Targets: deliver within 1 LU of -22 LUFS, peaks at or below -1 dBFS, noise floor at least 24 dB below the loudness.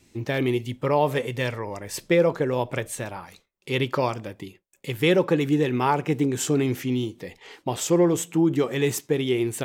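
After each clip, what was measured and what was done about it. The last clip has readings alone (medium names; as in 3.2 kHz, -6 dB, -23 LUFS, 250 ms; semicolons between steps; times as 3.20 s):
loudness -24.0 LUFS; peak level -7.5 dBFS; loudness target -22.0 LUFS
-> trim +2 dB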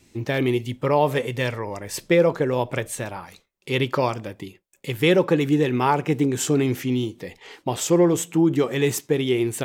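loudness -22.0 LUFS; peak level -5.5 dBFS; noise floor -63 dBFS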